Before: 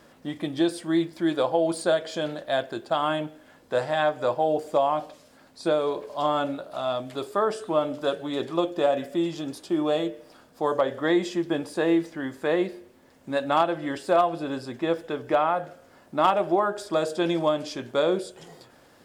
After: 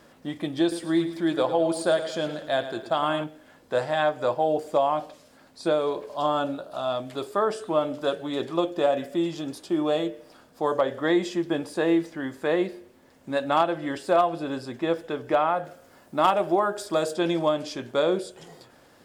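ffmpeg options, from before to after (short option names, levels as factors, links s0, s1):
-filter_complex "[0:a]asettb=1/sr,asplit=3[s0][s1][s2];[s0]atrim=end=0.614[s3];[s1]atrim=start=0.61:end=3.24,asetpts=PTS-STARTPTS,afade=t=in:d=0.004:c=qsin,afade=t=out:st=2.626:d=0.004:c=qsin,aecho=1:1:108|216|324|432|540:0.251|0.118|0.0555|0.0261|0.0123,atrim=end_sample=115983[s4];[s2]atrim=start=3.236[s5];[s3][s4]acrossfade=d=0.004:c1=hsin:c2=qsin[s6];[s6][s5]acrossfade=d=0.004:c1=qsin:c2=hsin,asettb=1/sr,asplit=3[s7][s8][s9];[s7]atrim=end=6.164[s10];[s8]atrim=start=6.16:end=6.92,asetpts=PTS-STARTPTS,afade=t=in:d=0.004:c=qsin,afade=t=out:st=0.756:d=0.004:c=qsin,equalizer=f=2100:t=o:w=0.26:g=-10[s11];[s9]atrim=start=6.916[s12];[s10][s11]acrossfade=d=0.004:c1=hsin:c2=qsin[s13];[s13][s12]acrossfade=d=0.004:c1=qsin:c2=hsin,asettb=1/sr,asplit=3[s14][s15][s16];[s14]atrim=end=15.654[s17];[s15]atrim=start=15.65:end=17.14,asetpts=PTS-STARTPTS,afade=t=in:d=0.004:c=qsin,afade=t=out:st=1.486:d=0.004:c=qsin,highshelf=f=7600:g=7.5[s18];[s16]atrim=start=17.136[s19];[s17][s18]acrossfade=d=0.004:c1=hsin:c2=qsin[s20];[s20][s19]acrossfade=d=0.004:c1=qsin:c2=hsin"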